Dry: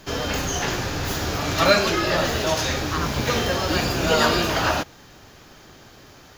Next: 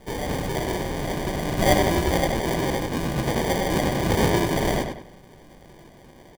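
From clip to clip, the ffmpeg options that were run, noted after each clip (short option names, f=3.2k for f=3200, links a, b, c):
-filter_complex "[0:a]aecho=1:1:5.5:0.7,acrusher=samples=33:mix=1:aa=0.000001,asplit=2[a][b];[b]adelay=98,lowpass=f=4.4k:p=1,volume=-5dB,asplit=2[c][d];[d]adelay=98,lowpass=f=4.4k:p=1,volume=0.34,asplit=2[e][f];[f]adelay=98,lowpass=f=4.4k:p=1,volume=0.34,asplit=2[g][h];[h]adelay=98,lowpass=f=4.4k:p=1,volume=0.34[i];[a][c][e][g][i]amix=inputs=5:normalize=0,volume=-3.5dB"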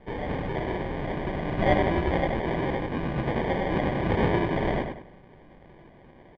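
-af "lowpass=f=2.8k:w=0.5412,lowpass=f=2.8k:w=1.3066,volume=-3dB"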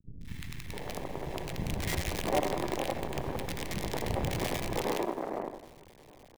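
-filter_complex "[0:a]asplit=2[a][b];[b]acompressor=threshold=-35dB:ratio=5,volume=2dB[c];[a][c]amix=inputs=2:normalize=0,acrusher=bits=4:dc=4:mix=0:aa=0.000001,acrossover=split=220|1500[d][e][f];[f]adelay=210[g];[e]adelay=660[h];[d][h][g]amix=inputs=3:normalize=0,volume=-8dB"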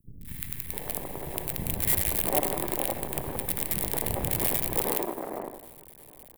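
-af "aexciter=amount=6.7:drive=6.6:freq=8.5k"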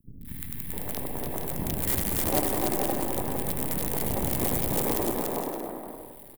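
-af "equalizer=f=250:t=o:w=0.67:g=6,equalizer=f=2.5k:t=o:w=0.67:g=-4,equalizer=f=6.3k:t=o:w=0.67:g=-8,aeval=exprs='0.224*(abs(mod(val(0)/0.224+3,4)-2)-1)':c=same,aecho=1:1:290|464|568.4|631|668.6:0.631|0.398|0.251|0.158|0.1"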